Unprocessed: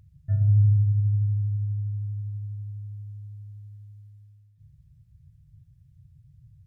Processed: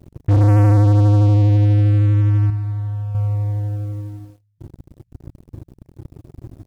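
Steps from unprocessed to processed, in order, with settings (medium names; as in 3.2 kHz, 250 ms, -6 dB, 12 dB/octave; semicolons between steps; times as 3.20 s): waveshaping leveller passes 5; 2.50–3.15 s: feedback comb 55 Hz, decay 0.53 s, harmonics all, mix 70%; trim +3 dB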